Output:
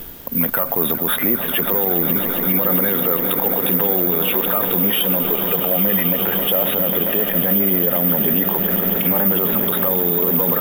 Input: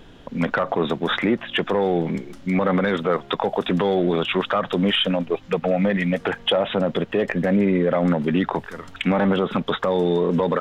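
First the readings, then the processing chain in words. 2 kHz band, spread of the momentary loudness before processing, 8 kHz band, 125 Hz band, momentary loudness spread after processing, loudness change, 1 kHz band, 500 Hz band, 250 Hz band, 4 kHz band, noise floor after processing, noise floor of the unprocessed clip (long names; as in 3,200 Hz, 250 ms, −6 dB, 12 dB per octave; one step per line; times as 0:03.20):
−0.5 dB, 5 LU, can't be measured, −1.0 dB, 2 LU, +6.5 dB, −1.0 dB, −1.5 dB, −1.0 dB, −0.5 dB, −24 dBFS, −45 dBFS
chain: reversed playback
upward compression, threshold −32 dBFS
reversed playback
echo that builds up and dies away 135 ms, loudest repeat 8, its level −16 dB
background noise pink −51 dBFS
bad sample-rate conversion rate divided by 3×, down none, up zero stuff
boost into a limiter +6.5 dB
level −4 dB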